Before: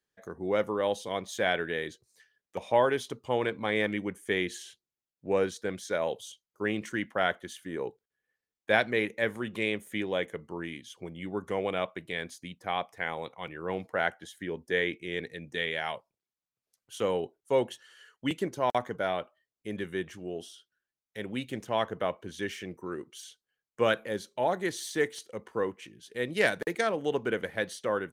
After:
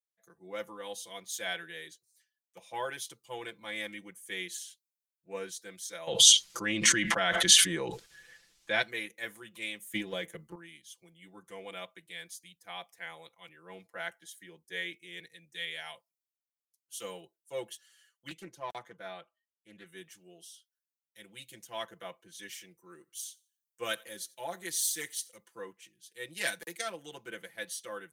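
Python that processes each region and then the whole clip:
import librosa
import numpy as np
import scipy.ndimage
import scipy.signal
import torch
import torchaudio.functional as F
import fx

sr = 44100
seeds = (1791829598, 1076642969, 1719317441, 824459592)

y = fx.chain(x, sr, fx.lowpass(hz=5300.0, slope=12),
    fx.low_shelf(hz=130.0, db=10.0),
    fx.env_flatten(amount_pct=100), at=(6.07, 8.82))
y = fx.chain(y, sr, fx.low_shelf(hz=380.0, db=8.0),
    fx.transient(attack_db=8, sustain_db=4), at=(9.82, 10.55))
y = fx.chain(y, sr, fx.lowpass(hz=3600.0, slope=6),
    fx.doppler_dist(depth_ms=0.25), at=(18.28, 19.86))
y = fx.chain(y, sr, fx.high_shelf(hz=6500.0, db=5.0),
    fx.echo_thinned(ms=88, feedback_pct=32, hz=280.0, wet_db=-23), at=(22.89, 25.37))
y = F.preemphasis(torch.from_numpy(y), 0.9).numpy()
y = y + 0.99 * np.pad(y, (int(5.9 * sr / 1000.0), 0))[:len(y)]
y = fx.band_widen(y, sr, depth_pct=40)
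y = y * librosa.db_to_amplitude(1.0)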